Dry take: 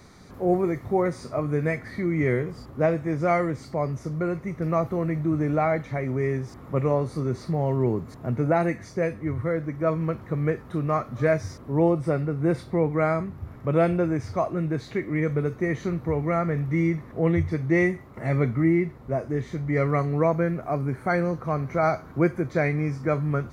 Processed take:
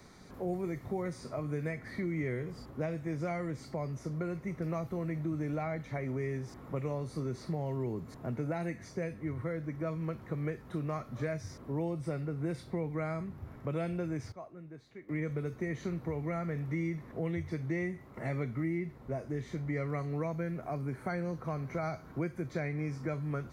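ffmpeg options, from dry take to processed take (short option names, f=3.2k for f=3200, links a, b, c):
-filter_complex "[0:a]asplit=3[a][b][c];[a]atrim=end=14.32,asetpts=PTS-STARTPTS,afade=t=out:st=14.16:d=0.16:c=log:silence=0.141254[d];[b]atrim=start=14.32:end=15.09,asetpts=PTS-STARTPTS,volume=-17dB[e];[c]atrim=start=15.09,asetpts=PTS-STARTPTS,afade=t=in:d=0.16:c=log:silence=0.141254[f];[d][e][f]concat=n=3:v=0:a=1,equalizer=f=86:w=1.5:g=-4.5,bandreject=f=1.2k:w=22,acrossover=split=200|2500[g][h][i];[g]acompressor=threshold=-33dB:ratio=4[j];[h]acompressor=threshold=-32dB:ratio=4[k];[i]acompressor=threshold=-46dB:ratio=4[l];[j][k][l]amix=inputs=3:normalize=0,volume=-4.5dB"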